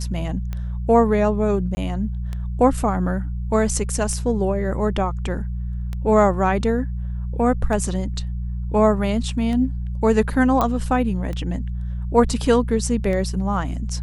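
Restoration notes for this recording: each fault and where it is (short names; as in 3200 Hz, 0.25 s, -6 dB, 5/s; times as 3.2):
hum 60 Hz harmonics 3 -26 dBFS
tick 33 1/3 rpm -17 dBFS
1.75–1.77 gap 20 ms
10.61 pop -8 dBFS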